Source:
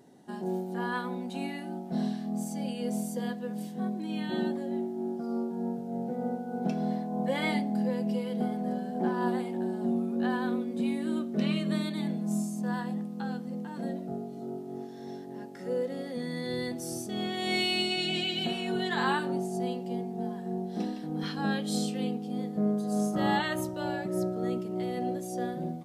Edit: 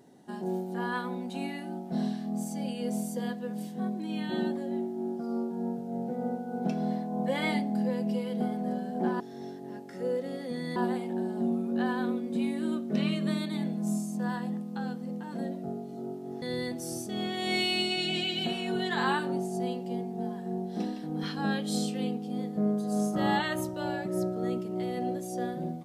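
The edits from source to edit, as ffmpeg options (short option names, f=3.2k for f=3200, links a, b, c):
-filter_complex "[0:a]asplit=4[a][b][c][d];[a]atrim=end=9.202[e];[b]atrim=start=14.858:end=16.422[f];[c]atrim=start=9.198:end=14.862[g];[d]atrim=start=16.418[h];[e][f]acrossfade=d=0.004:c1=hsin:c2=hsin[i];[i][g]acrossfade=d=0.004:c1=hsin:c2=hsin[j];[j][h]acrossfade=d=0.004:c1=hsin:c2=hsin"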